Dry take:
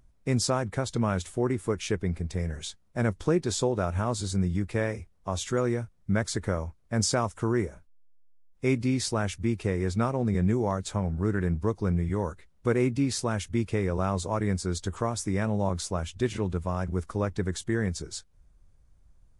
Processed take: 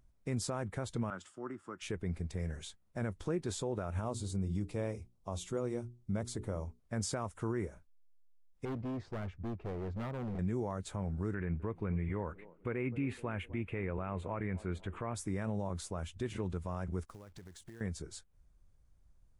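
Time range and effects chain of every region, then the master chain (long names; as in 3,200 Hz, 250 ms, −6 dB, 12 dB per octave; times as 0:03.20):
0:01.10–0:01.82: downward compressor 2 to 1, threshold −29 dBFS + loudspeaker in its box 260–7,100 Hz, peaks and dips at 450 Hz −10 dB, 710 Hz −4 dB, 1,300 Hz +8 dB, 2,300 Hz −8 dB, 4,000 Hz −10 dB, 6,200 Hz −8 dB + multiband upward and downward expander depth 100%
0:04.01–0:06.80: parametric band 1,700 Hz −10.5 dB 0.86 octaves + mains-hum notches 60/120/180/240/300/360/420 Hz
0:08.65–0:10.39: low-pass filter 1,200 Hz + gain into a clipping stage and back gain 29.5 dB
0:11.34–0:15.15: high shelf with overshoot 3,600 Hz −13.5 dB, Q 3 + delay with a band-pass on its return 253 ms, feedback 49%, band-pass 460 Hz, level −20 dB
0:17.05–0:17.81: downward expander −46 dBFS + floating-point word with a short mantissa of 2 bits + downward compressor 12 to 1, threshold −40 dBFS
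whole clip: dynamic equaliser 5,300 Hz, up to −7 dB, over −51 dBFS, Q 1.2; brickwall limiter −19.5 dBFS; level −6.5 dB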